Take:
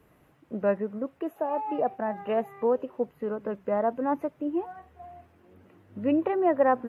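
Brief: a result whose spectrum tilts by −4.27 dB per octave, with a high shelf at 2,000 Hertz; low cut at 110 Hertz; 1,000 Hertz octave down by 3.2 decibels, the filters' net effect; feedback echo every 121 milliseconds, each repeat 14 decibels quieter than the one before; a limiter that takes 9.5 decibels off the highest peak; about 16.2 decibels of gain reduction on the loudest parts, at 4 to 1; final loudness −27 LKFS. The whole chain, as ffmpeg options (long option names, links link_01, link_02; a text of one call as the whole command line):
ffmpeg -i in.wav -af "highpass=110,equalizer=frequency=1000:width_type=o:gain=-3.5,highshelf=frequency=2000:gain=-5.5,acompressor=threshold=-39dB:ratio=4,alimiter=level_in=13.5dB:limit=-24dB:level=0:latency=1,volume=-13.5dB,aecho=1:1:121|242:0.2|0.0399,volume=20dB" out.wav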